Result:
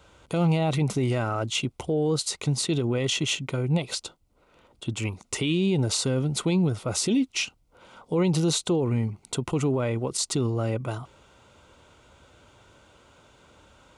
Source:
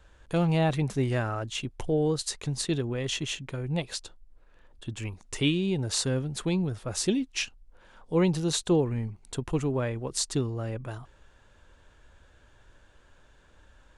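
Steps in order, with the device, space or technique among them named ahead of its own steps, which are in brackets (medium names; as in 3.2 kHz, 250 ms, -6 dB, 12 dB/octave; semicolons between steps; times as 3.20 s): PA system with an anti-feedback notch (high-pass 100 Hz 12 dB/octave; Butterworth band-stop 1.7 kHz, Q 5.2; peak limiter -24 dBFS, peak gain reduction 11 dB); trim +7.5 dB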